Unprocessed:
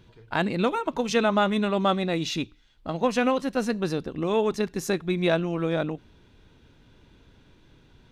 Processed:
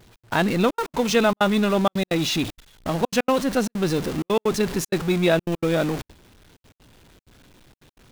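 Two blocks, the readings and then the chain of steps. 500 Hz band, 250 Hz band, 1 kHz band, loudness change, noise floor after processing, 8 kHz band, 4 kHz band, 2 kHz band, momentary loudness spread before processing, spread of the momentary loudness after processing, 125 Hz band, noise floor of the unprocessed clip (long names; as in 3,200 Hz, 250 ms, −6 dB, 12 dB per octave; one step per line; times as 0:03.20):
+3.0 dB, +3.5 dB, +2.0 dB, +3.5 dB, below −85 dBFS, +7.5 dB, +4.5 dB, +3.5 dB, 8 LU, 7 LU, +4.5 dB, −58 dBFS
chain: converter with a step at zero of −28.5 dBFS
gate pattern "xx.xxxxxx.x.xxx" 192 BPM −60 dB
noise gate with hold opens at −29 dBFS
level +2.5 dB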